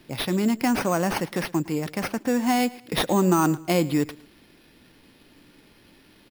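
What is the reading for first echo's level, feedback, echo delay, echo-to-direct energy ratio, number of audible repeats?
−20.0 dB, 30%, 111 ms, −19.5 dB, 2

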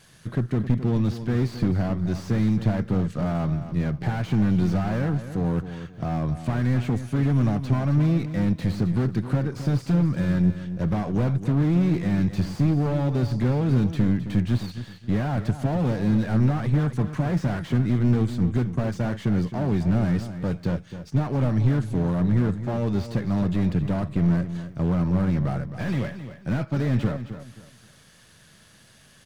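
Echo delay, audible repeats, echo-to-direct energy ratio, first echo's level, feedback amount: 265 ms, 3, −11.0 dB, −11.5 dB, 28%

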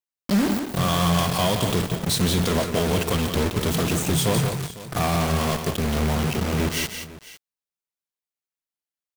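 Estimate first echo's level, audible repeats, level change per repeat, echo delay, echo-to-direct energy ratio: −7.5 dB, 2, repeats not evenly spaced, 173 ms, −7.0 dB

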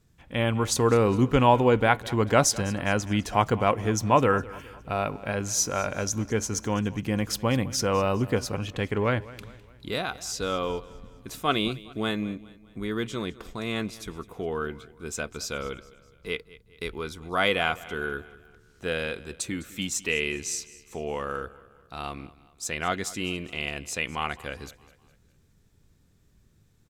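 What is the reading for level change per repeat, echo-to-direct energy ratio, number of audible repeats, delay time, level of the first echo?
−6.5 dB, −18.5 dB, 3, 206 ms, −19.5 dB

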